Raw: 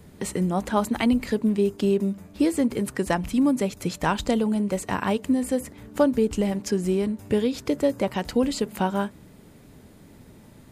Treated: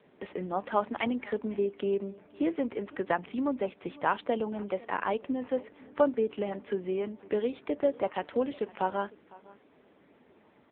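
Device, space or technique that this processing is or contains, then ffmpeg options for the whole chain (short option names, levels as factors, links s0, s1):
satellite phone: -af "highpass=390,lowpass=3100,aecho=1:1:505:0.075,volume=0.794" -ar 8000 -c:a libopencore_amrnb -b:a 6700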